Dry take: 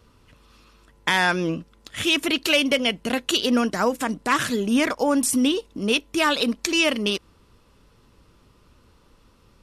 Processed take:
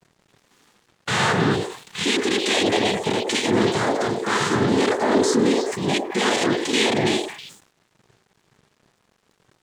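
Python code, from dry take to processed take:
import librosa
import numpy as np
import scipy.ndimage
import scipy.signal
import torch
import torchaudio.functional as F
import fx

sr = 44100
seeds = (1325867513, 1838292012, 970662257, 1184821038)

y = np.clip(x, -10.0 ** (-21.0 / 20.0), 10.0 ** (-21.0 / 20.0))
y = fx.noise_vocoder(y, sr, seeds[0], bands=6)
y = fx.echo_stepped(y, sr, ms=106, hz=540.0, octaves=1.4, feedback_pct=70, wet_db=-1.5)
y = fx.hpss(y, sr, part='percussive', gain_db=-9)
y = np.sign(y) * np.maximum(np.abs(y) - 10.0 ** (-60.0 / 20.0), 0.0)
y = fx.sustainer(y, sr, db_per_s=110.0)
y = y * librosa.db_to_amplitude(8.5)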